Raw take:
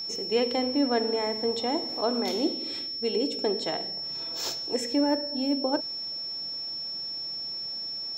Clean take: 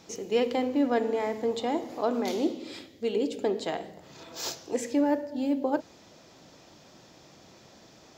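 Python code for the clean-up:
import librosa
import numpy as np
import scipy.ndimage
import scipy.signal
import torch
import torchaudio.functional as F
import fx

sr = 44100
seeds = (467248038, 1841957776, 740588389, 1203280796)

y = fx.notch(x, sr, hz=5400.0, q=30.0)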